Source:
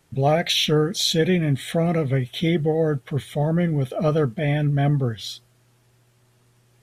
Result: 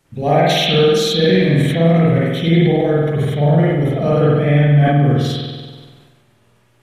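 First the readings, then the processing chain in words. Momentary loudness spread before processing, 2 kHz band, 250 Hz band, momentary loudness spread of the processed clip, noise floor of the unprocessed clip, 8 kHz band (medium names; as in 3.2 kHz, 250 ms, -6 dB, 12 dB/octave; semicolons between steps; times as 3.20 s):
7 LU, +7.5 dB, +8.0 dB, 5 LU, -61 dBFS, no reading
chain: spring tank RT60 1.3 s, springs 48 ms, chirp 50 ms, DRR -7 dB; decay stretcher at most 38 dB/s; trim -1 dB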